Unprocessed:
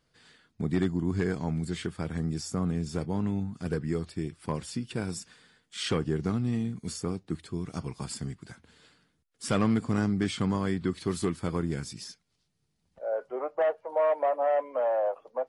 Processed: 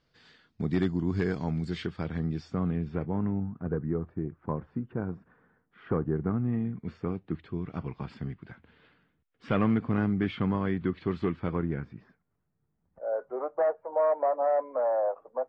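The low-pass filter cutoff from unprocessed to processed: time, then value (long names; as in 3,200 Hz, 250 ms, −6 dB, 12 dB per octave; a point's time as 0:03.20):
low-pass filter 24 dB per octave
0:01.56 5,600 Hz
0:02.66 3,200 Hz
0:03.63 1,400 Hz
0:06.00 1,400 Hz
0:07.22 2,900 Hz
0:11.47 2,900 Hz
0:12.07 1,600 Hz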